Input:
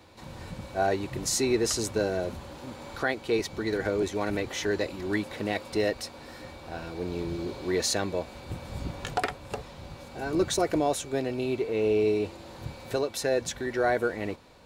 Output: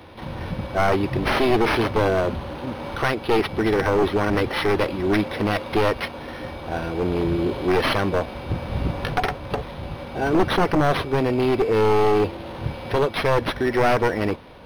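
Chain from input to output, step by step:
wavefolder on the positive side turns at −25.5 dBFS
in parallel at +1 dB: brickwall limiter −21.5 dBFS, peak gain reduction 7 dB
on the sum: linearly interpolated sample-rate reduction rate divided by 6×
level +4.5 dB

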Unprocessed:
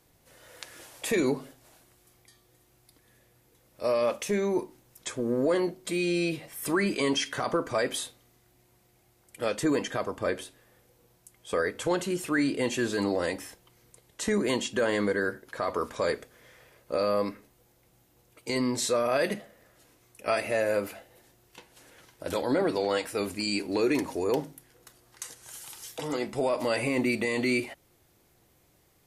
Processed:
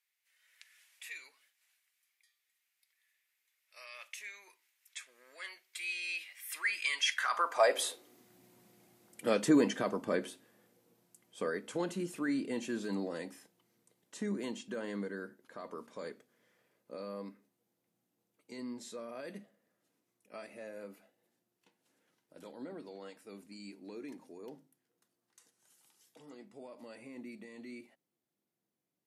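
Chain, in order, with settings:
source passing by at 0:08.52, 7 m/s, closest 7.2 metres
high-pass filter sweep 2,100 Hz → 200 Hz, 0:07.05–0:08.31

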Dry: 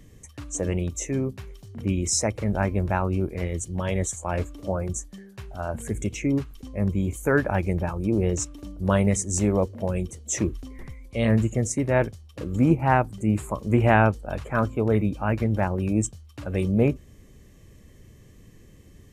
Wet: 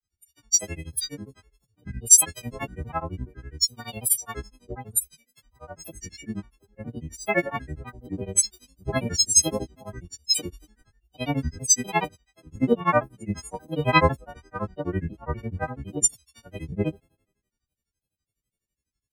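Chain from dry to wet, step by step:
every partial snapped to a pitch grid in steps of 4 semitones
granular cloud, grains 12 per second, spray 14 ms, pitch spread up and down by 7 semitones
multiband upward and downward expander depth 100%
level −6 dB

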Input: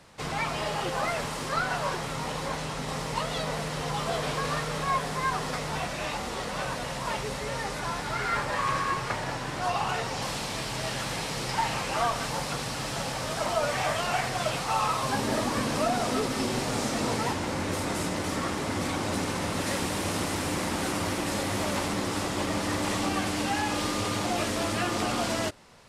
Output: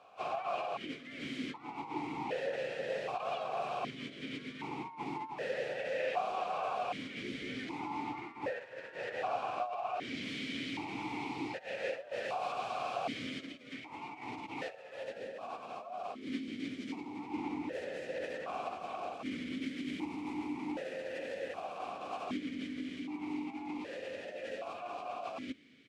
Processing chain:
compressor whose output falls as the input rises −32 dBFS, ratio −0.5
pitch-shifted copies added −3 semitones 0 dB, +5 semitones −11 dB
formant filter that steps through the vowels 1.3 Hz
level +1.5 dB

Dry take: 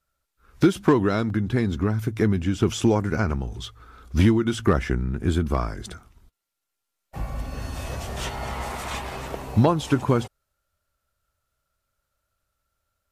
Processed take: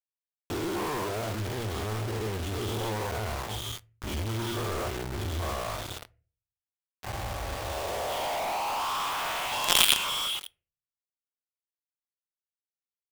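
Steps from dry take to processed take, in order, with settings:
every bin's largest magnitude spread in time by 240 ms
drawn EQ curve 110 Hz 0 dB, 160 Hz −20 dB, 250 Hz −27 dB, 390 Hz −10 dB, 740 Hz +6 dB, 1,100 Hz +7 dB, 1,800 Hz −4 dB, 3,400 Hz +15 dB, 7,100 Hz −27 dB, 13,000 Hz +3 dB
band-pass filter sweep 230 Hz → 2,800 Hz, 0:07.46–0:09.77
parametric band 130 Hz −4.5 dB 0.65 octaves
single-tap delay 120 ms −19.5 dB
in parallel at +3 dB: downward compressor 12 to 1, threshold −41 dBFS, peak gain reduction 23.5 dB
on the sum: mains-hum notches 60/120 Hz
log-companded quantiser 2 bits
on a send at −18 dB: convolution reverb RT60 0.40 s, pre-delay 3 ms
on the sum: level −5 dB

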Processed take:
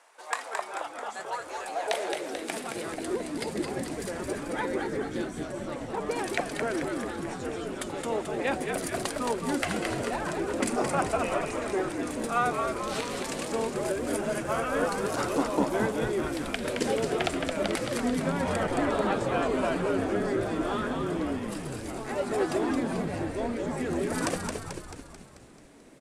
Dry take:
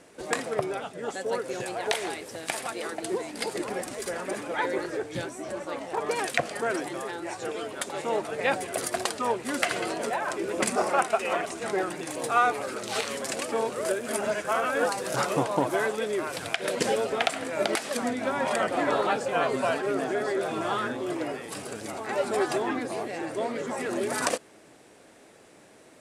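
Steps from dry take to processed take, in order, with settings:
high-pass filter sweep 920 Hz → 250 Hz, 0:01.49–0:02.64
echo with shifted repeats 219 ms, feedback 57%, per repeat −79 Hz, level −4.5 dB
level −5 dB

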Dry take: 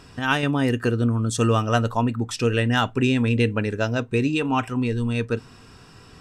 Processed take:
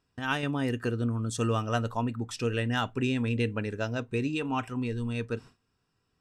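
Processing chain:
noise gate with hold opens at −33 dBFS
level −8 dB

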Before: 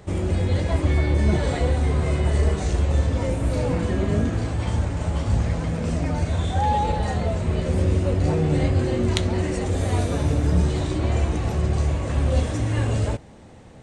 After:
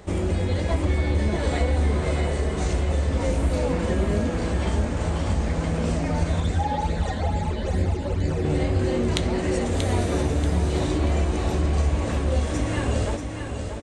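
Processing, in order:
parametric band 120 Hz −13.5 dB 0.38 octaves
downward compressor, threshold −21 dBFS, peak gain reduction 6.5 dB
0:06.40–0:08.45: all-pass phaser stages 12, 2.3 Hz, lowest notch 120–1,100 Hz
repeating echo 634 ms, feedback 34%, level −6.5 dB
level +2 dB

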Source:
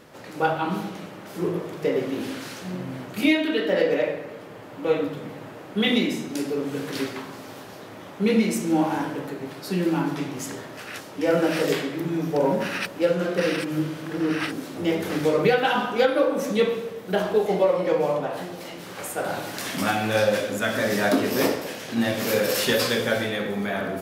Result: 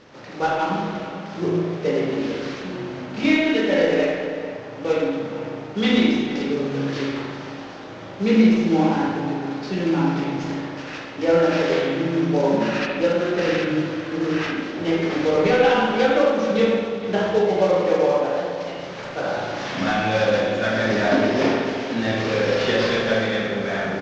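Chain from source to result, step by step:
variable-slope delta modulation 32 kbit/s
slap from a distant wall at 77 metres, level −11 dB
spring reverb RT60 1.3 s, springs 36/58 ms, chirp 30 ms, DRR −1 dB

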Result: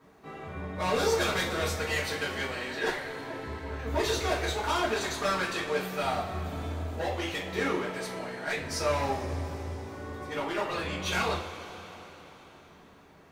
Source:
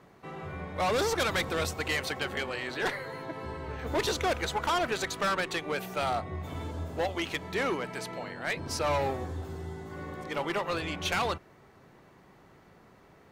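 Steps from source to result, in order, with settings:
coupled-rooms reverb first 0.34 s, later 4.3 s, from −19 dB, DRR −9 dB
bit reduction 12 bits
level −9 dB

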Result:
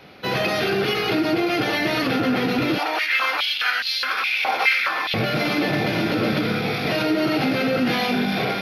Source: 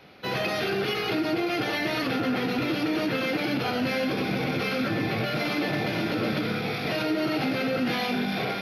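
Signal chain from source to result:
0:02.78–0:05.14: high-pass on a step sequencer 4.8 Hz 830–4,000 Hz
level +5.5 dB

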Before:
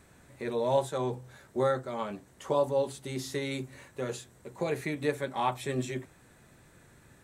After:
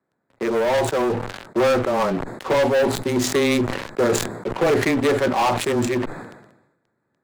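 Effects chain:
adaptive Wiener filter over 15 samples
Bessel high-pass filter 220 Hz, order 4
leveller curve on the samples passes 5
speech leveller 2 s
frequency shifter −13 Hz
level that may fall only so fast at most 62 dB per second

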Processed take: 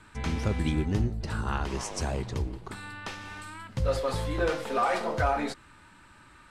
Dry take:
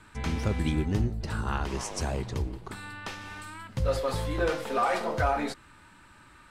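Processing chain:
low-pass filter 12,000 Hz 12 dB per octave

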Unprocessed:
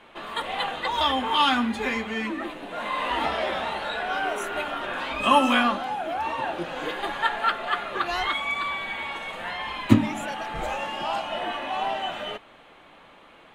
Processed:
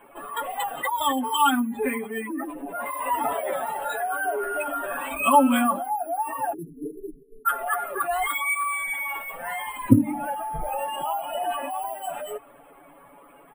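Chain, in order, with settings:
expanding power law on the bin magnitudes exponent 2
high-frequency loss of the air 370 metres
time-frequency box erased 0:06.53–0:07.46, 470–8,100 Hz
dynamic equaliser 3,300 Hz, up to +4 dB, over −41 dBFS, Q 0.73
bad sample-rate conversion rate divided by 4×, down filtered, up hold
comb filter 7.1 ms, depth 66%
highs frequency-modulated by the lows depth 0.18 ms
level +1 dB

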